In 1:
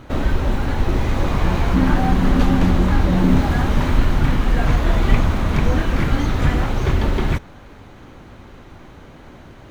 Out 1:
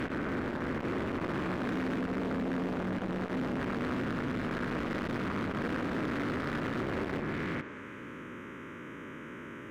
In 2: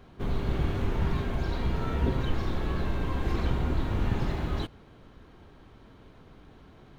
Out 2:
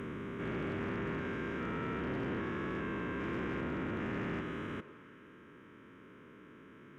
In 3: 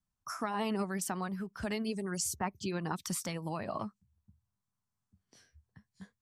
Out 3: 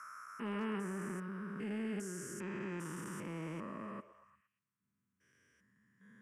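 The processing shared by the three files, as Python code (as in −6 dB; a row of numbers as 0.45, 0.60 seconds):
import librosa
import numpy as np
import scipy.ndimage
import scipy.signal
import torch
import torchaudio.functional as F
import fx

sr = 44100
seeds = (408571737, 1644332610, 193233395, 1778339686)

p1 = fx.spec_steps(x, sr, hold_ms=400)
p2 = fx.env_lowpass_down(p1, sr, base_hz=1700.0, full_db=-17.5)
p3 = scipy.signal.sosfilt(scipy.signal.butter(2, 240.0, 'highpass', fs=sr, output='sos'), p2)
p4 = fx.high_shelf(p3, sr, hz=5600.0, db=-9.0)
p5 = fx.transient(p4, sr, attack_db=-4, sustain_db=0)
p6 = fx.rider(p5, sr, range_db=3, speed_s=2.0)
p7 = p5 + (p6 * librosa.db_to_amplitude(-2.5))
p8 = fx.fixed_phaser(p7, sr, hz=1800.0, stages=4)
p9 = np.clip(p8, -10.0 ** (-28.0 / 20.0), 10.0 ** (-28.0 / 20.0))
p10 = fx.echo_stepped(p9, sr, ms=117, hz=490.0, octaves=0.7, feedback_pct=70, wet_db=-11)
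y = fx.transformer_sat(p10, sr, knee_hz=310.0)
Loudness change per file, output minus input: −15.5, −7.0, −6.0 LU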